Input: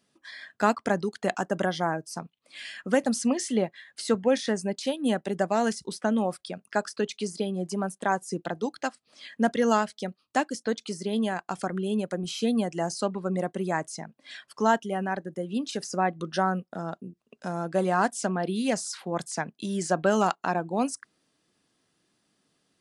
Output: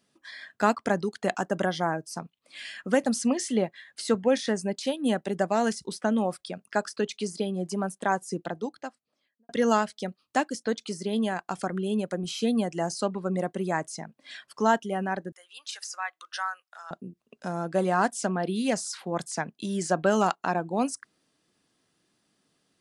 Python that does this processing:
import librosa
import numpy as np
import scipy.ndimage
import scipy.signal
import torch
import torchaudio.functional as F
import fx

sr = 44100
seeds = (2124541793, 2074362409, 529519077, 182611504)

y = fx.studio_fade_out(x, sr, start_s=8.2, length_s=1.29)
y = fx.highpass(y, sr, hz=1100.0, slope=24, at=(15.32, 16.91))